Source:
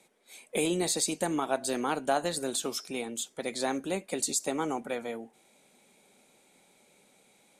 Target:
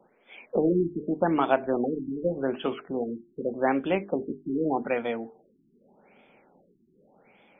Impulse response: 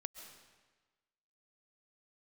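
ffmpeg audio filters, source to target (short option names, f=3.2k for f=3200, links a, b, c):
-af "bandreject=f=50:t=h:w=6,bandreject=f=100:t=h:w=6,bandreject=f=150:t=h:w=6,bandreject=f=200:t=h:w=6,bandreject=f=250:t=h:w=6,bandreject=f=300:t=h:w=6,bandreject=f=350:t=h:w=6,bandreject=f=400:t=h:w=6,bandreject=f=450:t=h:w=6,afftfilt=real='re*lt(b*sr/1024,380*pow(3600/380,0.5+0.5*sin(2*PI*0.84*pts/sr)))':imag='im*lt(b*sr/1024,380*pow(3600/380,0.5+0.5*sin(2*PI*0.84*pts/sr)))':win_size=1024:overlap=0.75,volume=7dB"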